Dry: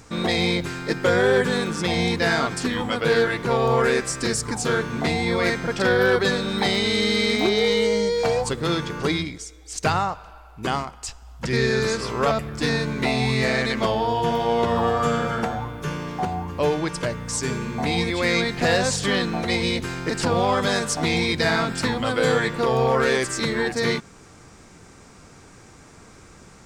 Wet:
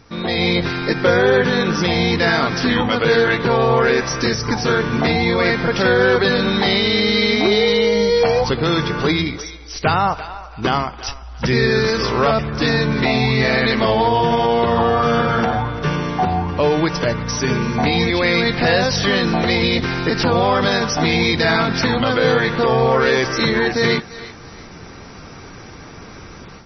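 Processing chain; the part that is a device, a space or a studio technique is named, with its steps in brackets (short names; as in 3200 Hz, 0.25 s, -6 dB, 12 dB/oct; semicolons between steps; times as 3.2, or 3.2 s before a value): thinning echo 0.34 s, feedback 25%, high-pass 500 Hz, level -18 dB; low-bitrate web radio (AGC gain up to 11 dB; limiter -7 dBFS, peak gain reduction 4.5 dB; MP3 24 kbps 24000 Hz)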